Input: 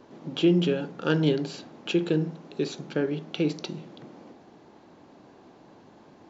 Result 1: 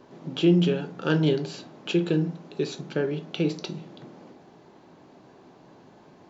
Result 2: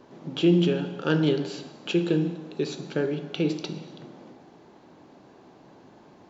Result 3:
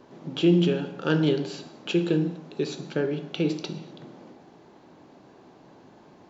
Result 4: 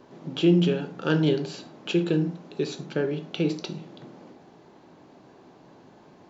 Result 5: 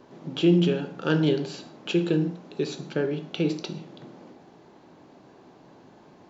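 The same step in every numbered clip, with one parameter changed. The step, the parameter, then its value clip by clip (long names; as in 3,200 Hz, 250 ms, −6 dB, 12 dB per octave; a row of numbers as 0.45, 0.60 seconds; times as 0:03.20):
reverb whose tail is shaped and stops, gate: 80, 430, 290, 130, 190 milliseconds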